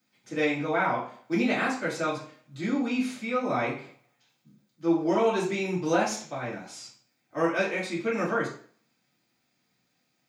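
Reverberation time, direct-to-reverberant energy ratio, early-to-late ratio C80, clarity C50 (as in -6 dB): 0.50 s, -7.5 dB, 10.5 dB, 6.5 dB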